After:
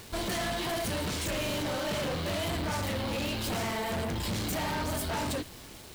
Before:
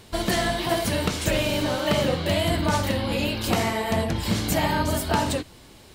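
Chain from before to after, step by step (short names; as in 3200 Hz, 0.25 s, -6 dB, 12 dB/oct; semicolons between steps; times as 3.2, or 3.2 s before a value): soft clip -29.5 dBFS, distortion -7 dB; requantised 8-bit, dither none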